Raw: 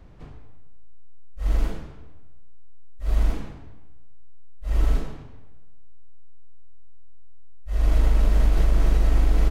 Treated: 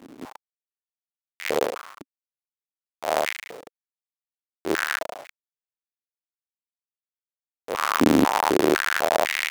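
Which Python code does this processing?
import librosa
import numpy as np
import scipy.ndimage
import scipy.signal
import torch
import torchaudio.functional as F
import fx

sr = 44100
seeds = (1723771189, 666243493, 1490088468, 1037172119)

y = fx.halfwave_hold(x, sr)
y = fx.filter_held_highpass(y, sr, hz=4.0, low_hz=270.0, high_hz=2100.0)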